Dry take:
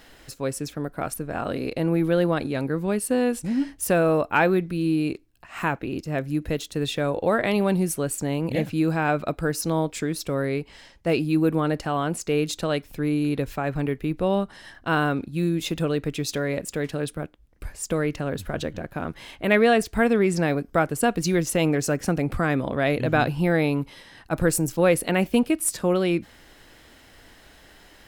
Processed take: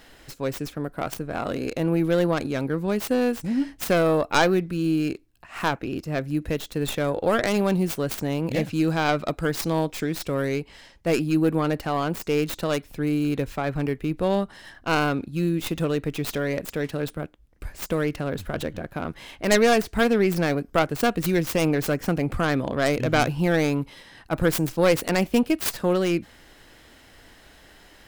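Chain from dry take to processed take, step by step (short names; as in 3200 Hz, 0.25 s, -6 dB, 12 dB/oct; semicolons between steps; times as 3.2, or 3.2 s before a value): tracing distortion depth 0.44 ms; 8.51–10.6 bell 5400 Hz +3 dB 1.9 oct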